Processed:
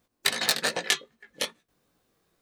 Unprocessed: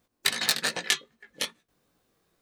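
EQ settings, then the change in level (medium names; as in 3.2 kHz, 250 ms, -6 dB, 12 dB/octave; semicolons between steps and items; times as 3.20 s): dynamic bell 560 Hz, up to +6 dB, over -47 dBFS, Q 0.98; 0.0 dB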